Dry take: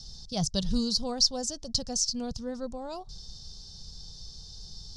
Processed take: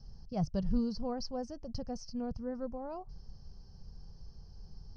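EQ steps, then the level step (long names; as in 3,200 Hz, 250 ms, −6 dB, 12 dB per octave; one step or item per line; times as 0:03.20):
moving average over 12 samples
high-frequency loss of the air 110 metres
−2.5 dB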